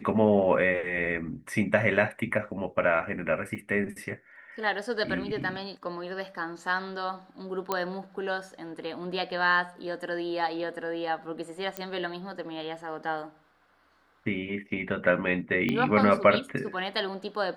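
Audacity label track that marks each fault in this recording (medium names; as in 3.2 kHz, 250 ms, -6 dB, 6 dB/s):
3.550000	3.560000	dropout 5.4 ms
7.720000	7.720000	pop -13 dBFS
11.770000	11.770000	pop -16 dBFS
15.690000	15.690000	pop -16 dBFS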